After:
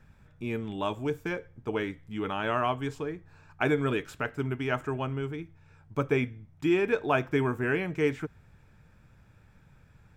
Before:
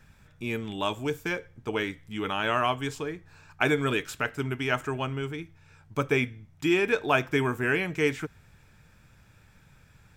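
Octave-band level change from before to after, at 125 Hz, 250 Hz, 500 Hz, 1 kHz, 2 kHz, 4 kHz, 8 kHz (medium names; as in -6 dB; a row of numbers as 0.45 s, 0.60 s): 0.0 dB, 0.0 dB, -0.5 dB, -2.5 dB, -5.0 dB, -7.5 dB, no reading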